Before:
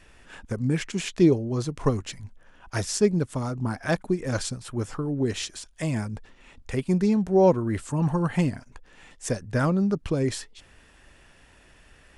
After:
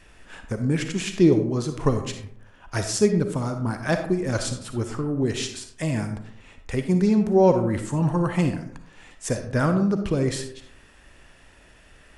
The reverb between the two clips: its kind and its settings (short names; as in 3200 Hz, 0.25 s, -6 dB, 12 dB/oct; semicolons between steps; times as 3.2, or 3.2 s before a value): digital reverb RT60 0.68 s, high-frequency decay 0.45×, pre-delay 15 ms, DRR 6.5 dB; gain +1.5 dB